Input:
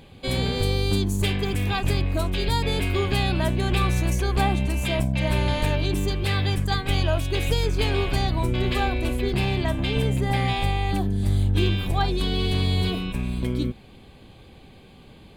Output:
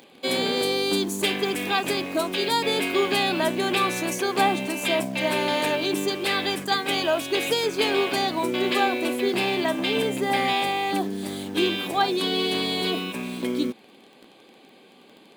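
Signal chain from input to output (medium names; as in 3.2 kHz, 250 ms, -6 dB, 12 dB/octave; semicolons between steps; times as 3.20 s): high-pass 240 Hz 24 dB/octave; in parallel at -5 dB: bit crusher 7-bit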